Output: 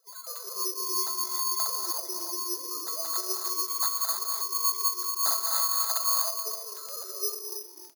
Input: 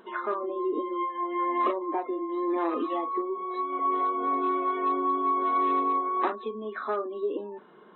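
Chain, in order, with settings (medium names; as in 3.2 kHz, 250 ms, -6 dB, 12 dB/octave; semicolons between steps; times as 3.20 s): formants replaced by sine waves; high-pass 340 Hz; peaking EQ 710 Hz +11 dB 2.1 oct; compression, threshold -17 dBFS, peak gain reduction 5.5 dB; feedback comb 660 Hz, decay 0.22 s, harmonics all, mix 90%; crackle 11 per s -42 dBFS; frequency-shifting echo 265 ms, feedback 31%, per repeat -48 Hz, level -14.5 dB; gated-style reverb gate 340 ms rising, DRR 2 dB; careless resampling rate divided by 8×, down none, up zero stuff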